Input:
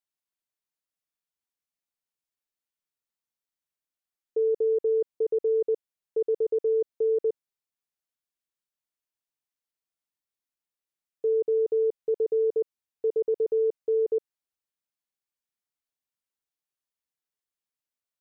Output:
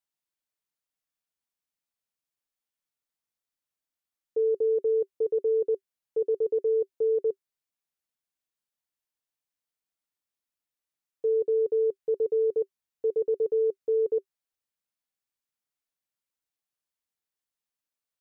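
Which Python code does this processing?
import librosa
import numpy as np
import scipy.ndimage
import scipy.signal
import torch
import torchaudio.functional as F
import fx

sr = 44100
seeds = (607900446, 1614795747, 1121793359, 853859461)

y = fx.notch(x, sr, hz=390.0, q=12.0)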